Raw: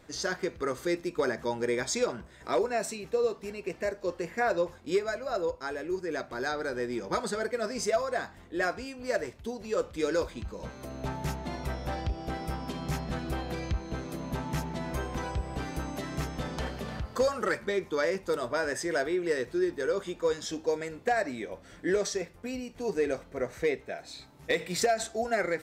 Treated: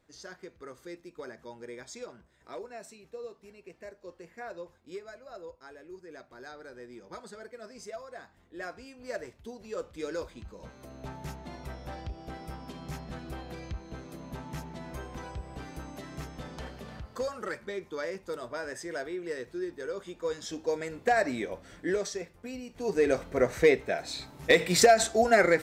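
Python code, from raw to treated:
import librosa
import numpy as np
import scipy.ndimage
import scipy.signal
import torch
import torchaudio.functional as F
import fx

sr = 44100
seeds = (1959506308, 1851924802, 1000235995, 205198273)

y = fx.gain(x, sr, db=fx.line((8.12, -14.0), (9.12, -7.0), (19.99, -7.0), (21.36, 4.0), (22.1, -4.0), (22.61, -4.0), (23.24, 7.0)))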